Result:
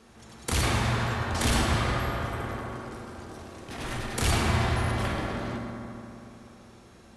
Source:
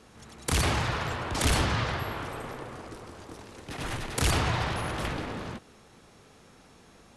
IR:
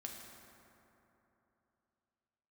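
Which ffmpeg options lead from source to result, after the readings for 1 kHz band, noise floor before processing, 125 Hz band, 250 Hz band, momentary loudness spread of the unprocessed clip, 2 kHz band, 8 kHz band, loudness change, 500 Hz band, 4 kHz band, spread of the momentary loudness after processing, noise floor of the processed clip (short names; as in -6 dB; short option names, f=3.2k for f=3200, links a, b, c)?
+1.5 dB, -56 dBFS, +3.0 dB, +3.5 dB, 18 LU, +1.0 dB, 0.0 dB, +1.5 dB, +1.5 dB, 0.0 dB, 17 LU, -52 dBFS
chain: -filter_complex "[1:a]atrim=start_sample=2205[a];[0:a][a]afir=irnorm=-1:irlink=0,volume=4dB"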